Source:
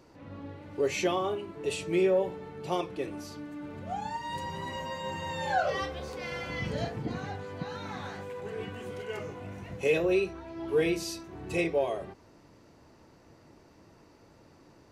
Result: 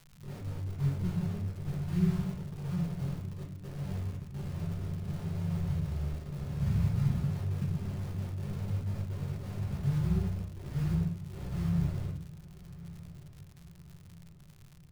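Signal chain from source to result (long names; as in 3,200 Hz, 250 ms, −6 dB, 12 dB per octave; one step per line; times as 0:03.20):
spectral envelope flattened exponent 0.6
inverse Chebyshev low-pass filter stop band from 680 Hz, stop band 70 dB
in parallel at −3.5 dB: bit-depth reduction 8 bits, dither none
on the sum: feedback delay with all-pass diffusion 1,178 ms, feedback 49%, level −16 dB
rectangular room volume 36 cubic metres, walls mixed, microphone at 0.98 metres
surface crackle 130 per second −45 dBFS
level +1 dB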